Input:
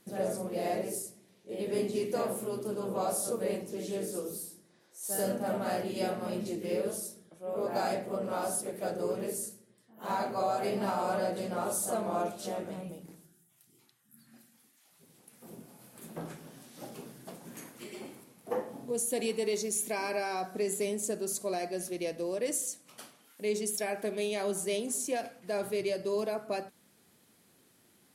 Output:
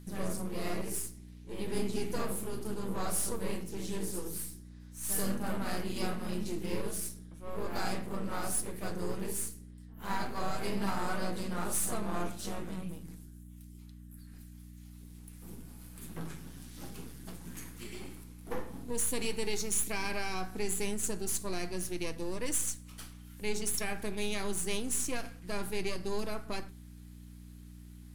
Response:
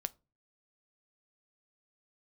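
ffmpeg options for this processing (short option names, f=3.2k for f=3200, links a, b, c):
-filter_complex "[0:a]aeval=exprs='if(lt(val(0),0),0.447*val(0),val(0))':c=same,equalizer=f=600:t=o:w=1.1:g=-11,aeval=exprs='val(0)+0.00282*(sin(2*PI*60*n/s)+sin(2*PI*2*60*n/s)/2+sin(2*PI*3*60*n/s)/3+sin(2*PI*4*60*n/s)/4+sin(2*PI*5*60*n/s)/5)':c=same[a];[1:a]atrim=start_sample=2205,asetrate=48510,aresample=44100[b];[a][b]afir=irnorm=-1:irlink=0,volume=5.5dB"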